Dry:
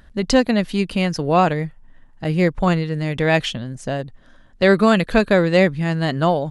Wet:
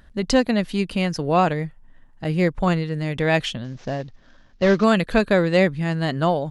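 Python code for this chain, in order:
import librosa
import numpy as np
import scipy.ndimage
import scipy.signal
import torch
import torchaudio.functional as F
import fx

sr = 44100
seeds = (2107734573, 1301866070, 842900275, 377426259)

y = fx.cvsd(x, sr, bps=32000, at=(3.64, 4.84))
y = y * librosa.db_to_amplitude(-2.5)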